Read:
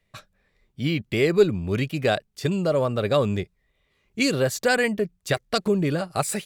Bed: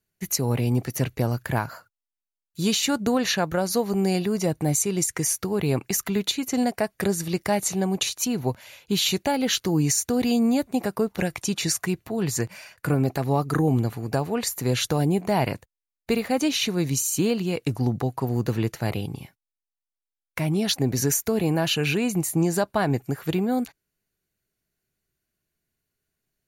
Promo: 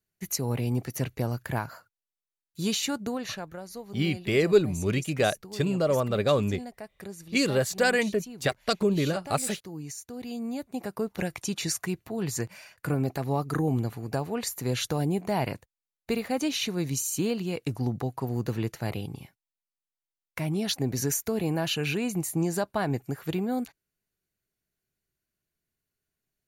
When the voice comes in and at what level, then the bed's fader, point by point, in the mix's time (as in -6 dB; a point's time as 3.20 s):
3.15 s, -2.5 dB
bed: 2.81 s -5 dB
3.65 s -17 dB
10.08 s -17 dB
11.14 s -5 dB